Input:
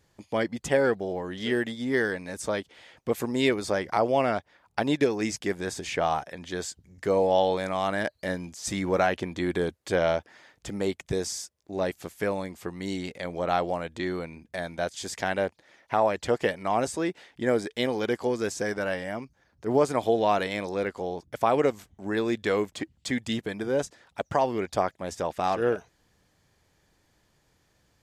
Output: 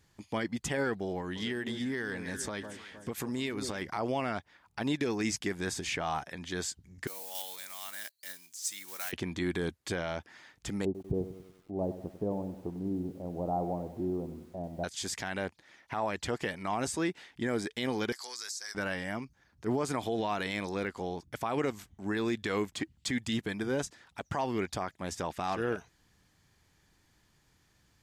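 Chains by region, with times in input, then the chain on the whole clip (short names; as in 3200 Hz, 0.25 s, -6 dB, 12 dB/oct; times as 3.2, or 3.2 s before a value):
1.2–3.82 echo with dull and thin repeats by turns 0.155 s, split 1100 Hz, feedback 67%, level -12 dB + compressor 5:1, threshold -29 dBFS
7.07–9.13 block floating point 5-bit + differentiator
10.85–14.84 steep low-pass 810 Hz + lo-fi delay 96 ms, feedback 55%, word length 9-bit, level -12.5 dB
18.12–18.75 HPF 1400 Hz + resonant high shelf 3600 Hz +6.5 dB, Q 3 + compressor 10:1, threshold -35 dBFS
whole clip: bell 550 Hz -8 dB 0.93 oct; limiter -21.5 dBFS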